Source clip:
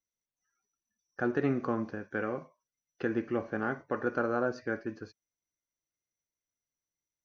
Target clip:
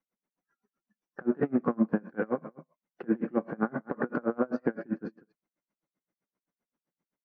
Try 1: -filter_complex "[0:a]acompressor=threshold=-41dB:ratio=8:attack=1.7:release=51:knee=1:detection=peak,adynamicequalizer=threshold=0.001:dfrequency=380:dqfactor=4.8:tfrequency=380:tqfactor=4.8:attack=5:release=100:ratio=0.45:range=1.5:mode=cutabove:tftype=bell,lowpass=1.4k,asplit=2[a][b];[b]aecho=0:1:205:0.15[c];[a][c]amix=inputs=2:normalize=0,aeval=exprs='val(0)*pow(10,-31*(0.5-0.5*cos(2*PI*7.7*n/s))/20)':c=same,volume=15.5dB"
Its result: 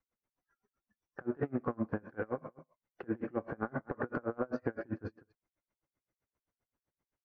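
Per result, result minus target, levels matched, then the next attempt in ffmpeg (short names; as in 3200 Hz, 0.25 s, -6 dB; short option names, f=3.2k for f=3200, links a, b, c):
125 Hz band +5.5 dB; compressor: peak gain reduction +5 dB
-filter_complex "[0:a]acompressor=threshold=-41dB:ratio=8:attack=1.7:release=51:knee=1:detection=peak,adynamicequalizer=threshold=0.001:dfrequency=380:dqfactor=4.8:tfrequency=380:tqfactor=4.8:attack=5:release=100:ratio=0.45:range=1.5:mode=cutabove:tftype=bell,lowpass=1.4k,lowshelf=f=130:t=q:w=3:g=-11.5,asplit=2[a][b];[b]aecho=0:1:205:0.15[c];[a][c]amix=inputs=2:normalize=0,aeval=exprs='val(0)*pow(10,-31*(0.5-0.5*cos(2*PI*7.7*n/s))/20)':c=same,volume=15.5dB"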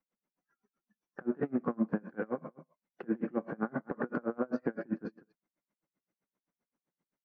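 compressor: peak gain reduction +5 dB
-filter_complex "[0:a]acompressor=threshold=-35dB:ratio=8:attack=1.7:release=51:knee=1:detection=peak,adynamicequalizer=threshold=0.001:dfrequency=380:dqfactor=4.8:tfrequency=380:tqfactor=4.8:attack=5:release=100:ratio=0.45:range=1.5:mode=cutabove:tftype=bell,lowpass=1.4k,lowshelf=f=130:t=q:w=3:g=-11.5,asplit=2[a][b];[b]aecho=0:1:205:0.15[c];[a][c]amix=inputs=2:normalize=0,aeval=exprs='val(0)*pow(10,-31*(0.5-0.5*cos(2*PI*7.7*n/s))/20)':c=same,volume=15.5dB"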